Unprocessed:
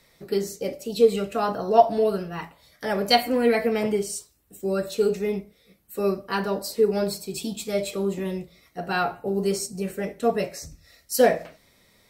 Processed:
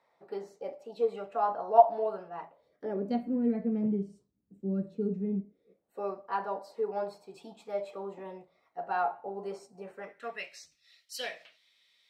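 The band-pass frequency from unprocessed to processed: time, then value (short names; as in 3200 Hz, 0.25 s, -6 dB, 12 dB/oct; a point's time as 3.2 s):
band-pass, Q 2.7
2.28 s 840 Hz
3.25 s 200 Hz
5.37 s 200 Hz
6.04 s 850 Hz
9.9 s 850 Hz
10.56 s 3200 Hz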